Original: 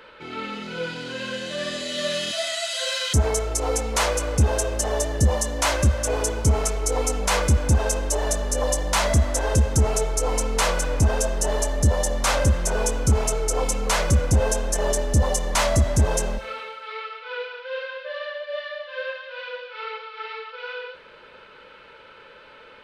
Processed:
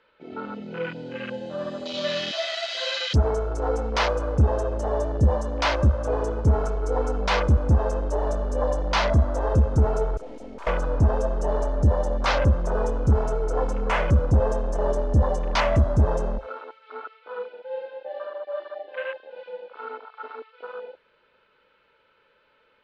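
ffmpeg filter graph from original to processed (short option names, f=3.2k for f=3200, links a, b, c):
-filter_complex "[0:a]asettb=1/sr,asplit=3[a][b][c];[a]atrim=end=10.174[d];[b]atrim=start=10.17:end=10.67,asetpts=PTS-STARTPTS,afade=t=in:d=0.004:c=qsin,afade=t=out:st=0.496:d=0.004:c=qsin,highpass=180,aecho=1:1:3.2:0.85,atrim=end_sample=22050,aeval=exprs='(tanh(50.1*val(0)+0.6)-tanh(0.6))/50.1':c=same[e];[c]atrim=start=10.666[f];[d][e]acrossfade=d=0.004:c1=hsin:c2=qsin[g];[g][f]acrossfade=d=0.004:c1=qsin:c2=hsin,afwtdn=0.0316,lowpass=5.5k"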